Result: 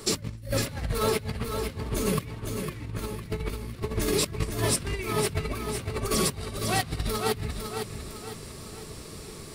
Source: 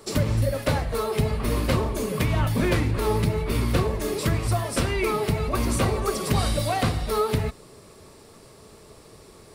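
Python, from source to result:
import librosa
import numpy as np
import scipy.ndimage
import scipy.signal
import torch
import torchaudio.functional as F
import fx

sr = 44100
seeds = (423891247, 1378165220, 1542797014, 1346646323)

y = fx.peak_eq(x, sr, hz=700.0, db=-8.0, octaves=1.7)
y = fx.over_compress(y, sr, threshold_db=-31.0, ratio=-0.5)
y = fx.echo_feedback(y, sr, ms=505, feedback_pct=44, wet_db=-6.5)
y = F.gain(torch.from_numpy(y), 1.5).numpy()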